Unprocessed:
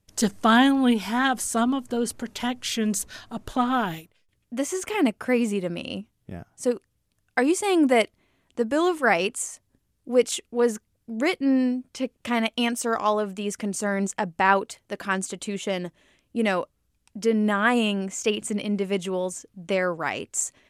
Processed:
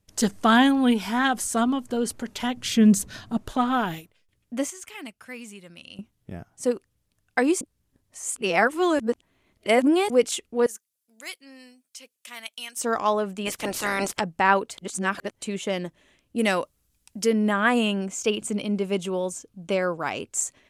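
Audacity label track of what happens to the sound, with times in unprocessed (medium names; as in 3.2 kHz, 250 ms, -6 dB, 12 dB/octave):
2.570000	3.370000	peaking EQ 150 Hz +12.5 dB 1.9 oct
4.700000	5.990000	amplifier tone stack bass-middle-treble 5-5-5
7.610000	10.100000	reverse
10.660000	12.770000	differentiator
13.450000	14.190000	spectral peaks clipped ceiling under each frame's peak by 26 dB
14.780000	15.420000	reverse
16.380000	17.330000	treble shelf 4.3 kHz +11 dB
18.050000	20.320000	peaking EQ 1.9 kHz -8.5 dB 0.25 oct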